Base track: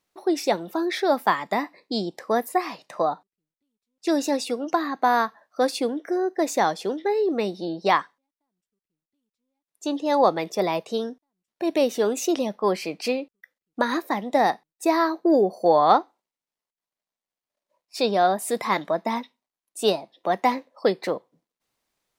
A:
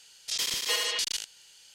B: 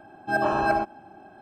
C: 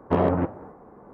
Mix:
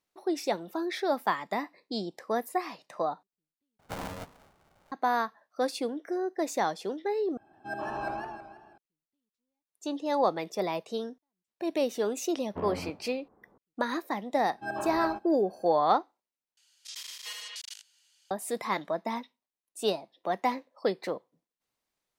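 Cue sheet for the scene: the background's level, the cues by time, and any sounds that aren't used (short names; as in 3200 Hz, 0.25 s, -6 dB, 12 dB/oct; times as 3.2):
base track -7 dB
3.79 replace with C -17 dB + polarity switched at an audio rate 370 Hz
7.37 replace with B -12.5 dB + warbling echo 0.162 s, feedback 42%, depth 164 cents, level -5 dB
12.45 add C -15.5 dB
14.34 add B -11 dB
16.57 replace with A -12 dB + HPF 890 Hz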